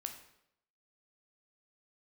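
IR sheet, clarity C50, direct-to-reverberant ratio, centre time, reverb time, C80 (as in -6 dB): 8.5 dB, 4.5 dB, 17 ms, 0.75 s, 11.5 dB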